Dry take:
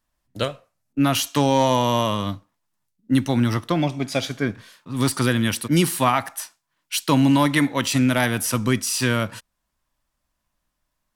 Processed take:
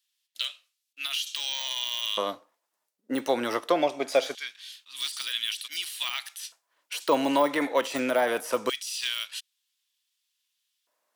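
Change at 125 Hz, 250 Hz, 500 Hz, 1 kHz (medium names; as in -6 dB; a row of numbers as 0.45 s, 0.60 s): -30.5 dB, -13.0 dB, -2.5 dB, -7.0 dB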